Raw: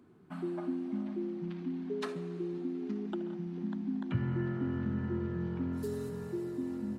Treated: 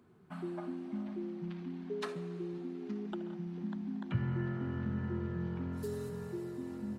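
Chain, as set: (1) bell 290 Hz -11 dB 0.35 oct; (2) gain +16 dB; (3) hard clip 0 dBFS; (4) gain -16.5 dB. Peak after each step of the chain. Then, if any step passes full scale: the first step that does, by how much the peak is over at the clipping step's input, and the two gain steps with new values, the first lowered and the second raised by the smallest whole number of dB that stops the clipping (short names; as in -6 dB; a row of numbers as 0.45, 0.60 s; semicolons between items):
-20.5, -4.5, -4.5, -21.0 dBFS; no overload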